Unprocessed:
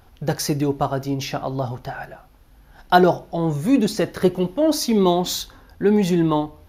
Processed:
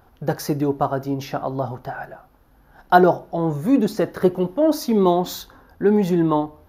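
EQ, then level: bass shelf 120 Hz -8.5 dB; high-order bell 4.5 kHz -8.5 dB 2.6 oct; treble shelf 11 kHz -4 dB; +1.5 dB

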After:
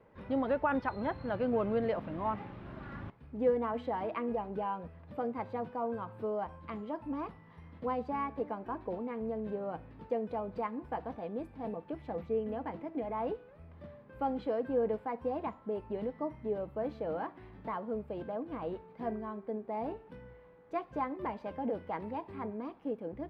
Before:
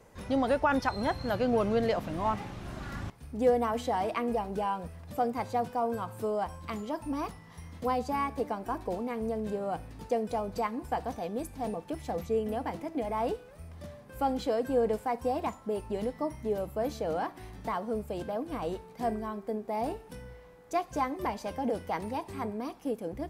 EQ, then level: distance through air 450 m; bass shelf 78 Hz -11 dB; band-stop 730 Hz, Q 12; -2.0 dB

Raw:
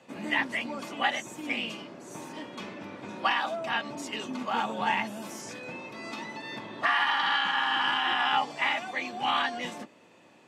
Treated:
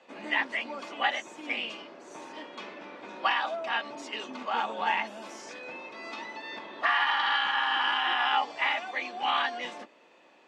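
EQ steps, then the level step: band-pass 370–5200 Hz; 0.0 dB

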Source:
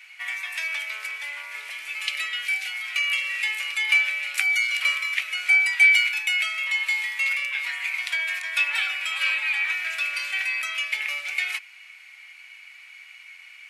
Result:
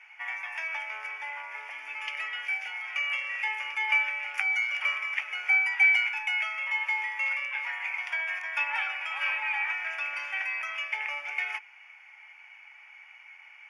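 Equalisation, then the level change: boxcar filter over 11 samples; peaking EQ 860 Hz +13.5 dB 0.24 oct; 0.0 dB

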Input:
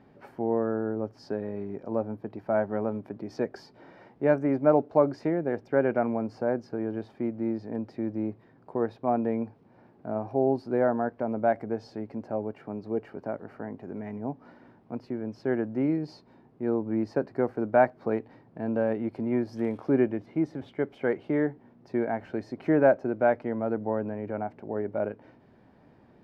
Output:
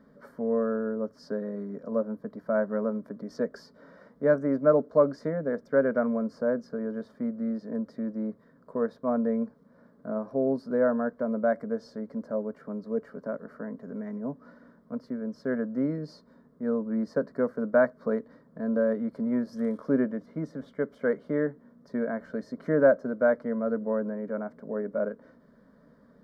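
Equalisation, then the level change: static phaser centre 520 Hz, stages 8; band-stop 910 Hz, Q 13; +2.5 dB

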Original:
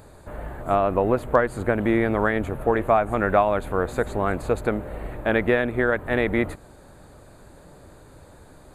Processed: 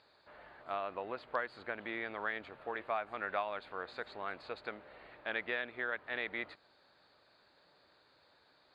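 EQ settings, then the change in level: band-pass filter 4.6 kHz, Q 4.7; distance through air 450 m; +13.5 dB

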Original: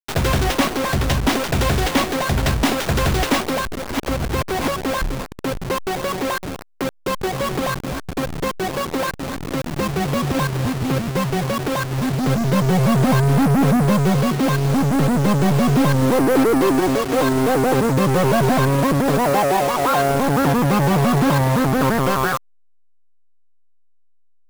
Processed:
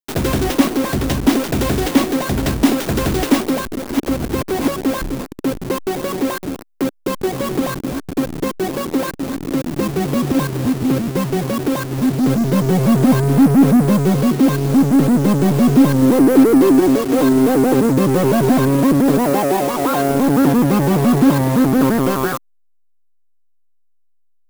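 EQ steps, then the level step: peaking EQ 290 Hz +11.5 dB 1.3 oct; treble shelf 7.3 kHz +8 dB; -3.5 dB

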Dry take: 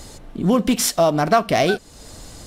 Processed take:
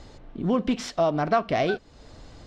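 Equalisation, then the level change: distance through air 170 m; peaking EQ 190 Hz -3.5 dB 0.28 oct; -5.5 dB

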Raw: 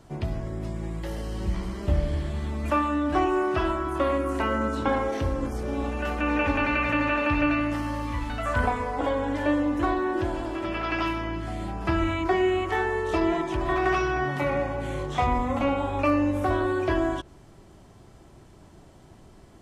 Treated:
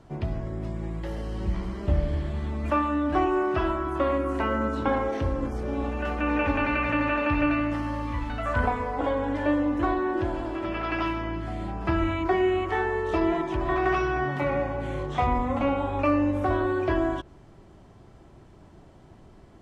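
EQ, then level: low-pass 2.9 kHz 6 dB/octave; 0.0 dB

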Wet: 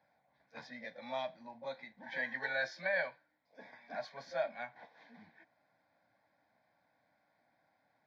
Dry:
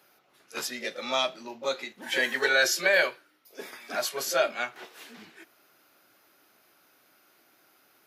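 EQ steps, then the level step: dynamic bell 490 Hz, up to -4 dB, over -39 dBFS, Q 0.91; tape spacing loss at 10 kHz 40 dB; static phaser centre 1.9 kHz, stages 8; -2.0 dB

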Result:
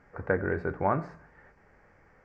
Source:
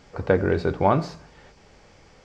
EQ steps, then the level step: resonant high shelf 2.5 kHz -12 dB, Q 3; -8.5 dB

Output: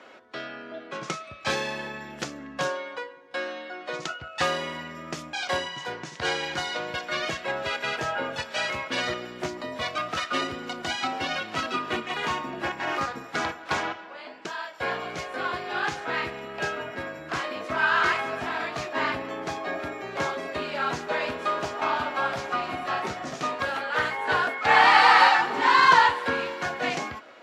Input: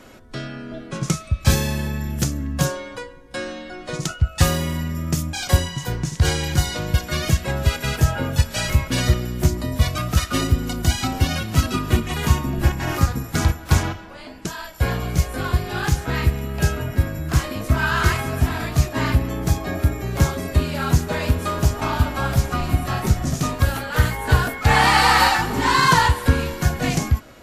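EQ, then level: band-pass 480–3400 Hz; 0.0 dB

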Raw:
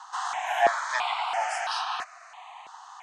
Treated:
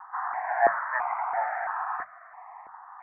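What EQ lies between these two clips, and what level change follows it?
steep low-pass 2 kHz 72 dB/octave; bass shelf 64 Hz +8.5 dB; hum notches 60/120/180 Hz; 0.0 dB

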